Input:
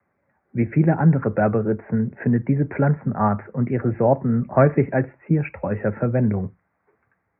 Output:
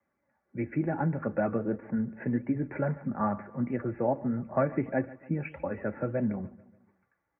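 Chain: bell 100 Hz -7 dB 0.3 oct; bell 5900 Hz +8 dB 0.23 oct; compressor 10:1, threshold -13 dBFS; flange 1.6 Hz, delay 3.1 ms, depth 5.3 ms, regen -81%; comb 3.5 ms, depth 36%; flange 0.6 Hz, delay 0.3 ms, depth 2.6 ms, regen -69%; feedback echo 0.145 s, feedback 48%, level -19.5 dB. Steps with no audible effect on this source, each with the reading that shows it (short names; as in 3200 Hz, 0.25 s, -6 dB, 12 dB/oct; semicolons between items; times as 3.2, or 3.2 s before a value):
bell 5900 Hz: input band ends at 1800 Hz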